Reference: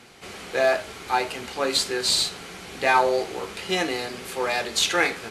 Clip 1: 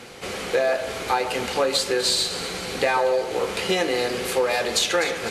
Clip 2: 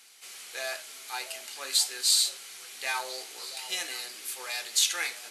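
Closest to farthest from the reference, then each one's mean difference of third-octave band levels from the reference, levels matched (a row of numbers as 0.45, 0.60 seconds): 1, 2; 4.0, 10.5 decibels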